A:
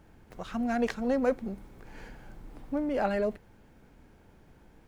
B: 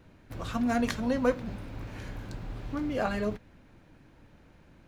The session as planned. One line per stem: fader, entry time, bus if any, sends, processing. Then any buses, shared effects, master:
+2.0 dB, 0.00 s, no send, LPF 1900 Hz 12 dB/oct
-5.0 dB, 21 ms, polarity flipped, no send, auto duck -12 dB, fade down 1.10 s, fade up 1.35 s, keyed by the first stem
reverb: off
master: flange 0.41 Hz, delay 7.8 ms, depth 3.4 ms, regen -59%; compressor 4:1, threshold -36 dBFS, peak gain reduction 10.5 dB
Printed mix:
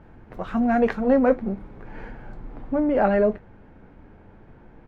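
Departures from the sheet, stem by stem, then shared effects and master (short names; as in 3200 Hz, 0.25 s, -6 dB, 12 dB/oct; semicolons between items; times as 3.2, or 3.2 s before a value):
stem A +2.0 dB -> +13.0 dB; master: missing compressor 4:1, threshold -36 dBFS, peak gain reduction 10.5 dB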